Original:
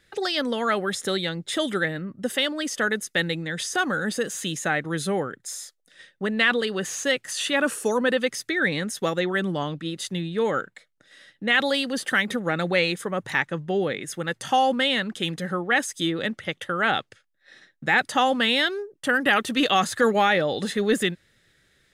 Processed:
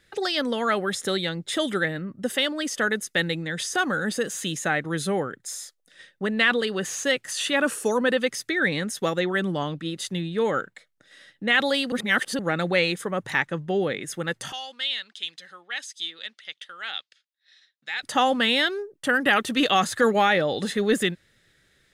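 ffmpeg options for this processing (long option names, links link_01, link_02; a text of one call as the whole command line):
ffmpeg -i in.wav -filter_complex "[0:a]asettb=1/sr,asplit=3[link_01][link_02][link_03];[link_01]atrim=end=14.524[link_04];[link_02]atrim=start=14.52:end=18.03,asetpts=PTS-STARTPTS,afade=type=in:duration=0.004:curve=qsin,afade=type=out:start_time=3.506:duration=0.004:curve=qsin,bandpass=frequency=4100:width_type=q:width=1.7[link_05];[link_03]atrim=start=18.026[link_06];[link_04][link_05]acrossfade=duration=0.004:curve1=hsin:curve2=qsin[link_07];[link_07][link_06]acrossfade=duration=0.004:curve1=qsin:curve2=hsin,asplit=3[link_08][link_09][link_10];[link_08]atrim=end=11.922[link_11];[link_09]atrim=start=11.918:end=12.392,asetpts=PTS-STARTPTS,areverse[link_12];[link_10]atrim=start=12.388[link_13];[link_11][link_12]acrossfade=duration=0.004:curve1=hsin:curve2=hsin[link_14];[link_14][link_13]acrossfade=duration=0.004:curve1=hsin:curve2=hsin" out.wav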